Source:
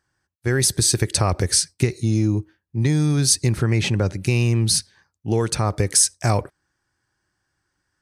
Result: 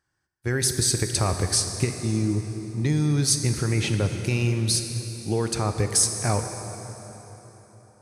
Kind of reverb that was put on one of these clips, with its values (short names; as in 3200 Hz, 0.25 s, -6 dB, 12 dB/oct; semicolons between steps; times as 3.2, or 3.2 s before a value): plate-style reverb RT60 4.1 s, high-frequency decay 0.75×, DRR 6 dB; gain -4.5 dB